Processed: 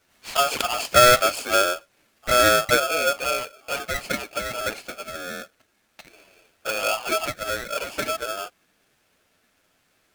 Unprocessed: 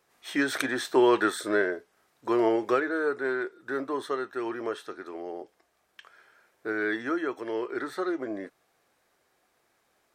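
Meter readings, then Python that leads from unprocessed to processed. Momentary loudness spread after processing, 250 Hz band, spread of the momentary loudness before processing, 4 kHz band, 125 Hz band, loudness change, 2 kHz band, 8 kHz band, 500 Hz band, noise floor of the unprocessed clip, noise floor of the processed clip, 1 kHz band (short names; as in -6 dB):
17 LU, -7.0 dB, 15 LU, +15.0 dB, +11.5 dB, +7.0 dB, +6.5 dB, +16.5 dB, +3.5 dB, -72 dBFS, -67 dBFS, +9.5 dB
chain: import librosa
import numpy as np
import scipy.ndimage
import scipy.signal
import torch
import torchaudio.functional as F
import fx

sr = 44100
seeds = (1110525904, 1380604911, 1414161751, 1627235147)

y = fx.env_flanger(x, sr, rest_ms=11.3, full_db=-22.0)
y = y * np.sign(np.sin(2.0 * np.pi * 980.0 * np.arange(len(y)) / sr))
y = y * librosa.db_to_amplitude(7.5)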